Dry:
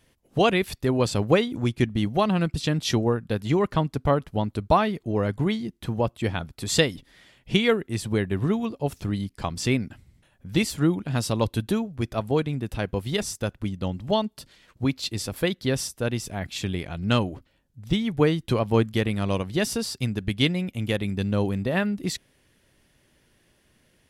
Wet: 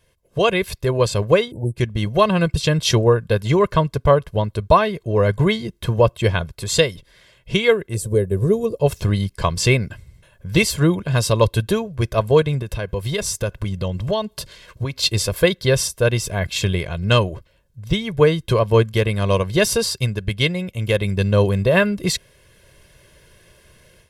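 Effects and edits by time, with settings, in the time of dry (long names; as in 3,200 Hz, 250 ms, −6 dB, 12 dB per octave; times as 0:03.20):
0:01.52–0:01.76: time-frequency box erased 930–7,600 Hz
0:07.94–0:08.79: drawn EQ curve 330 Hz 0 dB, 480 Hz +5 dB, 810 Hz −10 dB, 3,100 Hz −15 dB, 8,600 Hz +5 dB
0:12.62–0:14.99: downward compressor 2.5 to 1, threshold −33 dBFS
whole clip: comb filter 1.9 ms, depth 71%; automatic gain control; level −1 dB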